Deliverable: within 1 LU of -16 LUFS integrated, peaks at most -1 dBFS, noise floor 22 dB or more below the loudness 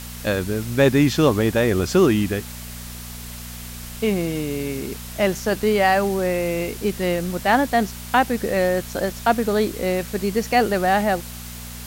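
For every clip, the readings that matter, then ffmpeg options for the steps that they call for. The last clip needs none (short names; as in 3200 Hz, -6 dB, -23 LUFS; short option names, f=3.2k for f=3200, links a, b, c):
hum 60 Hz; harmonics up to 240 Hz; hum level -34 dBFS; noise floor -35 dBFS; noise floor target -43 dBFS; loudness -21.0 LUFS; peak -3.5 dBFS; loudness target -16.0 LUFS
-> -af "bandreject=f=60:t=h:w=4,bandreject=f=120:t=h:w=4,bandreject=f=180:t=h:w=4,bandreject=f=240:t=h:w=4"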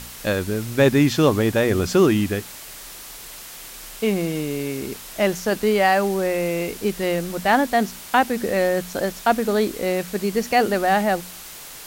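hum none; noise floor -39 dBFS; noise floor target -43 dBFS
-> -af "afftdn=nr=6:nf=-39"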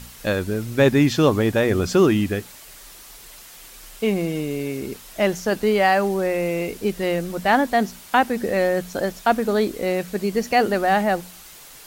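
noise floor -44 dBFS; loudness -21.0 LUFS; peak -4.0 dBFS; loudness target -16.0 LUFS
-> -af "volume=5dB,alimiter=limit=-1dB:level=0:latency=1"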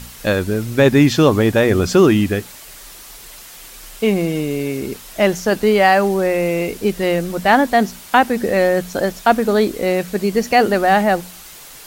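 loudness -16.5 LUFS; peak -1.0 dBFS; noise floor -39 dBFS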